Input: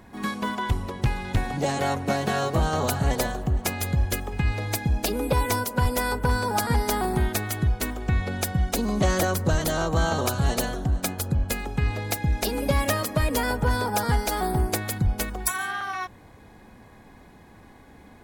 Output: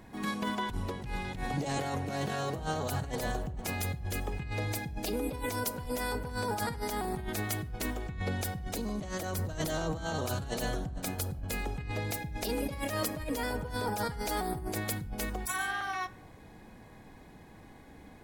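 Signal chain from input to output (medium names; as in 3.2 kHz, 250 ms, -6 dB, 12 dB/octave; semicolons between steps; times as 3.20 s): peaking EQ 1.2 kHz -3 dB 0.77 oct; compressor with a negative ratio -28 dBFS, ratio -1; simulated room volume 2200 m³, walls furnished, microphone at 0.55 m; trim -6 dB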